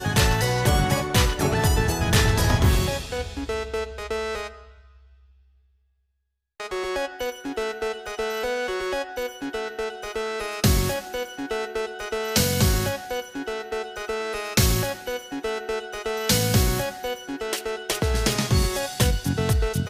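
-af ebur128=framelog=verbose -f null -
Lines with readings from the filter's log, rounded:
Integrated loudness:
  I:         -24.7 LUFS
  Threshold: -35.1 LUFS
Loudness range:
  LRA:        10.8 LU
  Threshold: -45.8 LUFS
  LRA low:   -33.1 LUFS
  LRA high:  -22.4 LUFS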